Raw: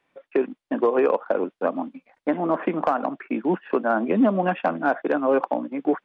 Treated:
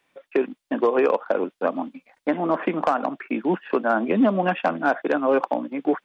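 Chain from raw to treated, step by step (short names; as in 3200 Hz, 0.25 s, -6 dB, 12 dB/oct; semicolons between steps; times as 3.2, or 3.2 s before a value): high shelf 3100 Hz +10.5 dB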